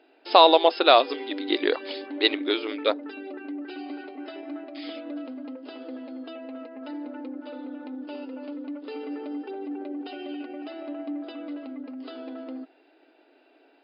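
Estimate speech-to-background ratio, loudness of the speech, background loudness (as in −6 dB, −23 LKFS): 16.0 dB, −21.0 LKFS, −37.0 LKFS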